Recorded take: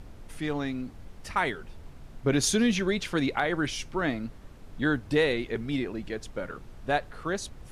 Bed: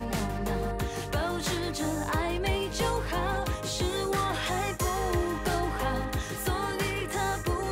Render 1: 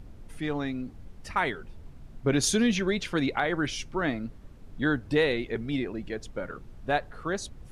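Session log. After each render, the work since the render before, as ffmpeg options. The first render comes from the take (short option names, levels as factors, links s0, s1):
-af "afftdn=nr=6:nf=-48"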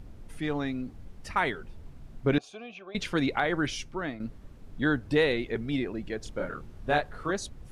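-filter_complex "[0:a]asettb=1/sr,asplit=3[s0][s1][s2];[s0]atrim=end=2.384[s3];[s1]atrim=start=2.38:end=2.95,asetpts=PTS-STARTPTS,afade=t=in:d=0.004:c=qsin,afade=t=out:st=0.566:d=0.004:c=qsin,asplit=3[s4][s5][s6];[s4]bandpass=f=730:t=q:w=8,volume=1[s7];[s5]bandpass=f=1090:t=q:w=8,volume=0.501[s8];[s6]bandpass=f=2440:t=q:w=8,volume=0.355[s9];[s7][s8][s9]amix=inputs=3:normalize=0[s10];[s2]atrim=start=2.946[s11];[s3][s10]acrossfade=d=0.004:c1=hsin:c2=qsin[s12];[s12][s11]acrossfade=d=0.004:c1=qsin:c2=hsin,asettb=1/sr,asplit=3[s13][s14][s15];[s13]atrim=end=6.204[s16];[s14]atrim=start=6.2:end=7.31,asetpts=PTS-STARTPTS,afade=t=in:d=0.004:c=qsin,afade=t=out:st=1.106:d=0.004:c=qsin,asplit=2[s17][s18];[s18]adelay=27,volume=0.708[s19];[s17][s19]amix=inputs=2:normalize=0,atrim=end_sample=48951[s20];[s15]atrim=start=7.306[s21];[s16][s20]acrossfade=d=0.004:c1=hsin:c2=qsin[s22];[s22][s21]acrossfade=d=0.004:c1=qsin:c2=hsin,asplit=2[s23][s24];[s23]atrim=end=4.2,asetpts=PTS-STARTPTS,afade=t=out:st=3.65:d=0.55:silence=0.334965[s25];[s24]atrim=start=4.2,asetpts=PTS-STARTPTS,afade=t=in:d=0.004:c=hsin:silence=0.334965[s26];[s25][s26]concat=n=2:v=0:a=1"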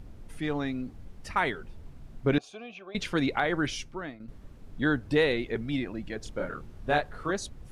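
-filter_complex "[0:a]asettb=1/sr,asplit=3[s0][s1][s2];[s0]atrim=end=5.614[s3];[s1]atrim=start=5.61:end=6.16,asetpts=PTS-STARTPTS,afade=t=in:d=0.004:c=qsin,afade=t=out:st=0.546:d=0.004:c=qsin,equalizer=f=410:w=6.7:g=-13.5[s4];[s2]atrim=start=6.156[s5];[s3][s4]acrossfade=d=0.004:c1=hsin:c2=qsin[s6];[s6][s5]acrossfade=d=0.004:c1=qsin:c2=hsin,asplit=2[s7][s8];[s7]atrim=end=4.28,asetpts=PTS-STARTPTS,afade=t=out:st=3.77:d=0.51:silence=0.266073[s9];[s8]atrim=start=4.28,asetpts=PTS-STARTPTS,afade=t=in:d=0.004:c=hsin:silence=0.266073[s10];[s9][s10]concat=n=2:v=0:a=1"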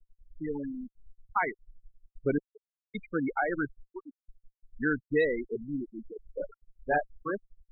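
-af "afftfilt=real='re*gte(hypot(re,im),0.112)':imag='im*gte(hypot(re,im),0.112)':win_size=1024:overlap=0.75,equalizer=f=65:w=0.41:g=-10.5"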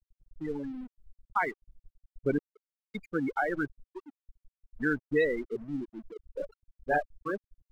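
-af "aeval=exprs='sgn(val(0))*max(abs(val(0))-0.002,0)':c=same"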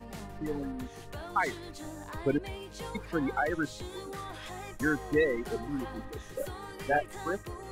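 -filter_complex "[1:a]volume=0.237[s0];[0:a][s0]amix=inputs=2:normalize=0"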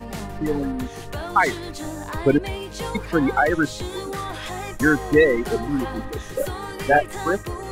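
-af "volume=3.55"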